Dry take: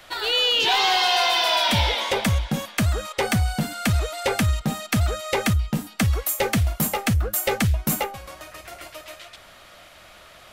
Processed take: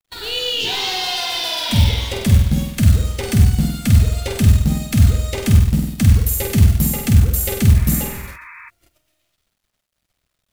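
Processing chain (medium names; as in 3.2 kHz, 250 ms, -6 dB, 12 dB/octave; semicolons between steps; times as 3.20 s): peaking EQ 920 Hz -12 dB 2.8 oct; flutter echo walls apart 8.3 m, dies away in 0.71 s; in parallel at -8 dB: word length cut 6-bit, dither none; on the sum: hum notches 60/120/180 Hz; gate -37 dBFS, range -26 dB; bass shelf 290 Hz +10 dB; companded quantiser 6-bit; spectral replace 7.77–8.67 s, 910–2600 Hz before; trim -1.5 dB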